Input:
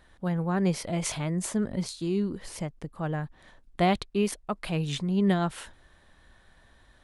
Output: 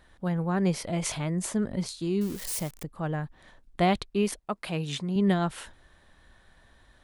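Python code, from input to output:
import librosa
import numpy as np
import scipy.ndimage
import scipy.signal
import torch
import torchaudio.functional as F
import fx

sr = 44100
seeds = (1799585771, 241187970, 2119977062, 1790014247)

y = fx.crossing_spikes(x, sr, level_db=-28.0, at=(2.21, 2.83))
y = fx.highpass(y, sr, hz=160.0, slope=6, at=(4.39, 5.16))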